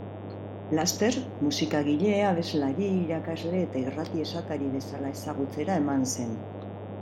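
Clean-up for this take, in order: de-hum 100 Hz, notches 37; noise print and reduce 30 dB

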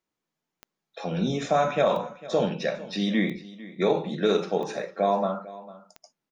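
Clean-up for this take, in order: de-click; inverse comb 0.45 s -18 dB

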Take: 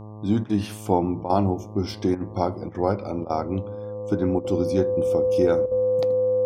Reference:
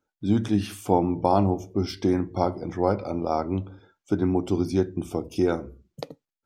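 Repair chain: de-hum 106.5 Hz, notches 11; notch 510 Hz, Q 30; interpolate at 0.44/1.24/2.15/2.69/3.24/4.39/5.66, 54 ms

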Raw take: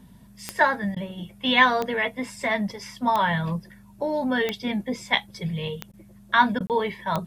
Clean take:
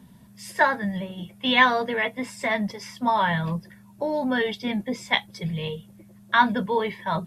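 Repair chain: de-click; de-hum 49 Hz, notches 5; interpolate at 6.67, 28 ms; interpolate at 0.95/5.92/6.59, 13 ms

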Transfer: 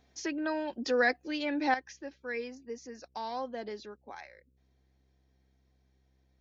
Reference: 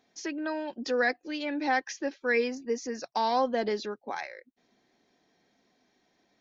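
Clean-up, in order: de-hum 65.3 Hz, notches 8; gain correction +10.5 dB, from 1.74

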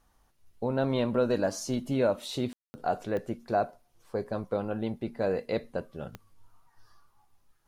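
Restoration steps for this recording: de-click; room tone fill 2.53–2.74

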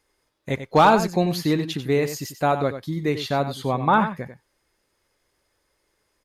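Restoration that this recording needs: clip repair -7 dBFS; inverse comb 93 ms -10.5 dB

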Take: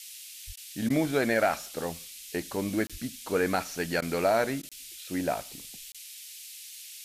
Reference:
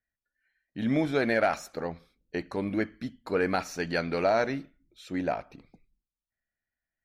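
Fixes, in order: de-plosive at 0.46/2.91; interpolate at 2.87/4.69/5.92, 26 ms; interpolate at 0.56/0.89/4.01/4.62, 10 ms; noise print and reduce 30 dB

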